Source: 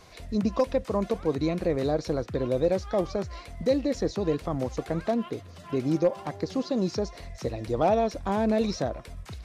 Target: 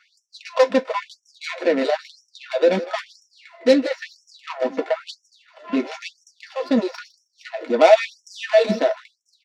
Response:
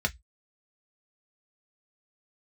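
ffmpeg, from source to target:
-filter_complex "[0:a]adynamicsmooth=sensitivity=2.5:basefreq=1000,highshelf=frequency=5400:gain=-6,aecho=1:1:157|314:0.178|0.0373[link_01];[1:a]atrim=start_sample=2205[link_02];[link_01][link_02]afir=irnorm=-1:irlink=0,crystalizer=i=10:c=0,equalizer=frequency=130:width=1.5:gain=9,afftfilt=real='re*gte(b*sr/1024,200*pow(5400/200,0.5+0.5*sin(2*PI*1*pts/sr)))':imag='im*gte(b*sr/1024,200*pow(5400/200,0.5+0.5*sin(2*PI*1*pts/sr)))':win_size=1024:overlap=0.75,volume=-1.5dB"

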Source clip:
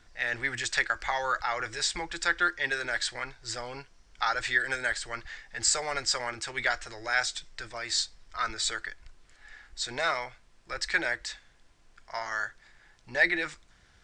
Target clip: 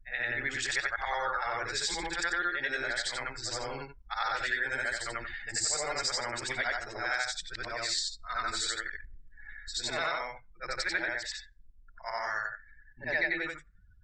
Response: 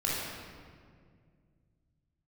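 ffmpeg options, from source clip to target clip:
-af "afftfilt=real='re':imag='-im':win_size=8192:overlap=0.75,acompressor=threshold=-43dB:ratio=2,afftdn=noise_reduction=36:noise_floor=-56,volume=9dB"

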